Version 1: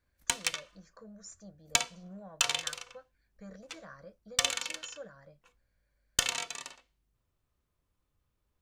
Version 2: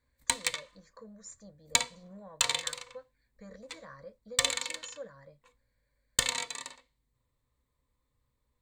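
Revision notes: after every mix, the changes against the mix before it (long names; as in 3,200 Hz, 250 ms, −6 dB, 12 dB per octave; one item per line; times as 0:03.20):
master: add EQ curve with evenly spaced ripples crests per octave 1, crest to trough 9 dB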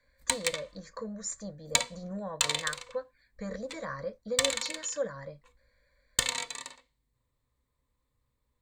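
speech +11.5 dB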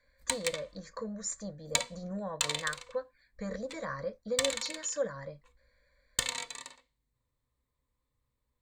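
background −3.5 dB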